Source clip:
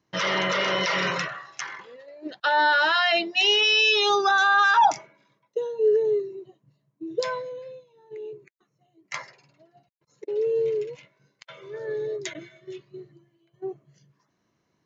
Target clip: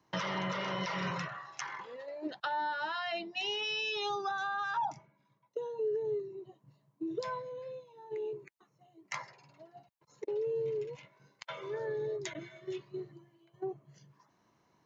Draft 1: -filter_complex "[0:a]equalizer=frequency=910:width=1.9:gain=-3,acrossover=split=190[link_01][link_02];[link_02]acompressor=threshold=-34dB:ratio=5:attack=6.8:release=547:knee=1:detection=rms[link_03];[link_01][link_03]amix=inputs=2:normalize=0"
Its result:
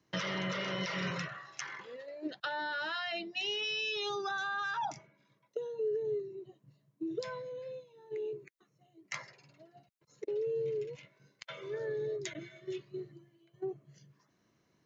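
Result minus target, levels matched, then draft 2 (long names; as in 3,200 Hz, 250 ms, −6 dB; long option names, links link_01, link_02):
1,000 Hz band −3.5 dB
-filter_complex "[0:a]equalizer=frequency=910:width=1.9:gain=8,acrossover=split=190[link_01][link_02];[link_02]acompressor=threshold=-34dB:ratio=5:attack=6.8:release=547:knee=1:detection=rms[link_03];[link_01][link_03]amix=inputs=2:normalize=0"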